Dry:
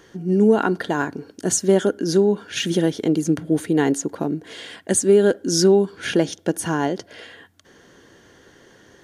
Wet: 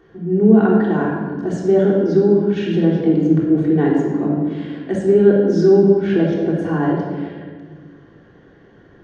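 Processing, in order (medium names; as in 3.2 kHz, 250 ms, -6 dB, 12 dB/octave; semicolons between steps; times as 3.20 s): tape spacing loss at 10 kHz 36 dB; simulated room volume 1800 m³, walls mixed, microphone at 3.5 m; trim -2 dB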